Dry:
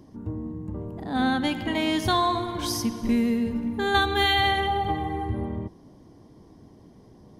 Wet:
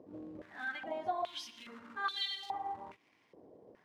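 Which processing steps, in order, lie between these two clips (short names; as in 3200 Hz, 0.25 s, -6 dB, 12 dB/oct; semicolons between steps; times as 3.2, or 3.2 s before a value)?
compressor 2:1, threshold -38 dBFS, peak gain reduction 11.5 dB; plain phase-vocoder stretch 0.52×; short-mantissa float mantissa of 2-bit; stepped band-pass 2.4 Hz 530–4100 Hz; gain +8.5 dB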